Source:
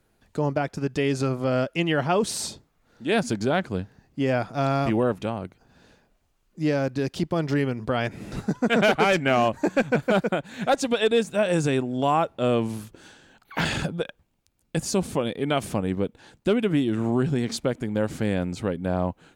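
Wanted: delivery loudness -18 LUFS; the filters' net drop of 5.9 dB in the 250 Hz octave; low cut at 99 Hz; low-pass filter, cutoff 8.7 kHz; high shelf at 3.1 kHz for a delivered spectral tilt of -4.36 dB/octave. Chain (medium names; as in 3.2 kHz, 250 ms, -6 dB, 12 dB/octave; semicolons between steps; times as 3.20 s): high-pass 99 Hz; low-pass 8.7 kHz; peaking EQ 250 Hz -7.5 dB; treble shelf 3.1 kHz -3.5 dB; trim +9.5 dB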